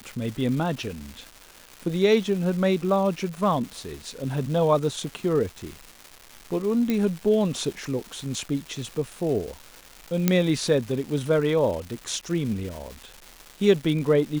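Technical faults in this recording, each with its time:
surface crackle 520 per second −33 dBFS
0:06.90: click −12 dBFS
0:10.28: click −5 dBFS

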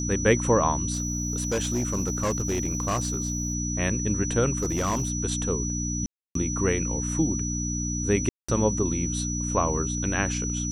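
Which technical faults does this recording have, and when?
mains hum 60 Hz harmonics 5 −30 dBFS
whistle 5,900 Hz −31 dBFS
0:00.93–0:03.55: clipping −21.5 dBFS
0:04.58–0:05.10: clipping −21.5 dBFS
0:06.06–0:06.35: drop-out 293 ms
0:08.29–0:08.48: drop-out 195 ms

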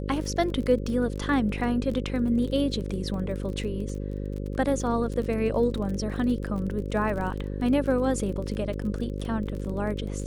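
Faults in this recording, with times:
mains buzz 50 Hz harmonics 11 −32 dBFS
surface crackle 31 per second −33 dBFS

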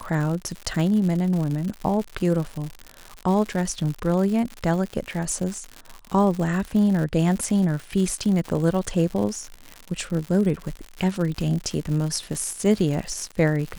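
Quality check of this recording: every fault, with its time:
surface crackle 140 per second −28 dBFS

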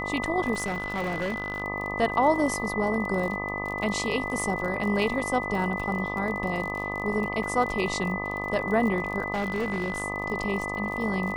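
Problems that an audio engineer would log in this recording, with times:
mains buzz 50 Hz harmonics 25 −34 dBFS
surface crackle 35 per second −32 dBFS
whistle 2,000 Hz −32 dBFS
0:00.54–0:01.62: clipping −25 dBFS
0:07.43: drop-out 3.9 ms
0:09.34–0:10.02: clipping −24 dBFS

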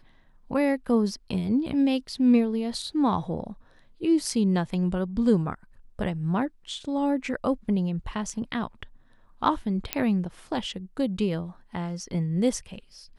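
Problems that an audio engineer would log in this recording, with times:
0:09.93: click −7 dBFS

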